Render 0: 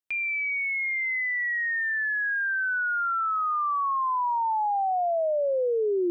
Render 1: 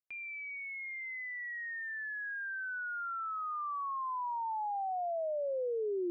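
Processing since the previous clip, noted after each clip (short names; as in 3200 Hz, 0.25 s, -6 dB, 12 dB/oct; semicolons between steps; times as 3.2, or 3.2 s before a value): high shelf 2500 Hz -11.5 dB; gain -9 dB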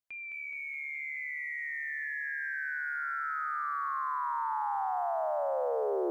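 lo-fi delay 0.212 s, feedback 80%, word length 12-bit, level -4.5 dB; gain +1 dB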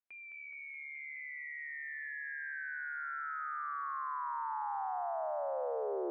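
BPF 240–2400 Hz; gain -5 dB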